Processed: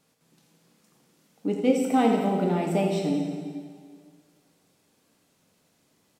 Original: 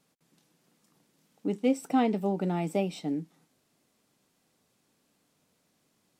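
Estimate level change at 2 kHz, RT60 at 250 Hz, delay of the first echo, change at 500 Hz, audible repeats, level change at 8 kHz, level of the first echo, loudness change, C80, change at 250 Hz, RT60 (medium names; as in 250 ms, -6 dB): +5.0 dB, 1.9 s, 84 ms, +5.5 dB, 1, +5.5 dB, -9.5 dB, +4.5 dB, 3.5 dB, +4.5 dB, 1.9 s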